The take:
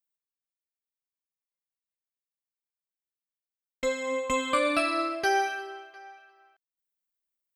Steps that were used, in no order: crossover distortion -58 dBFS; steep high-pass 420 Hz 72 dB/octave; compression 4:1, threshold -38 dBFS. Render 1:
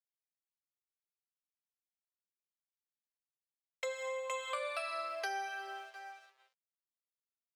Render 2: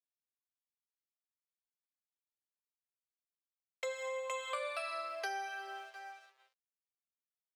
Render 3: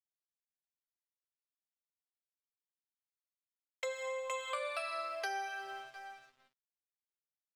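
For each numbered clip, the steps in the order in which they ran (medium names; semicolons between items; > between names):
crossover distortion > steep high-pass > compression; crossover distortion > compression > steep high-pass; steep high-pass > crossover distortion > compression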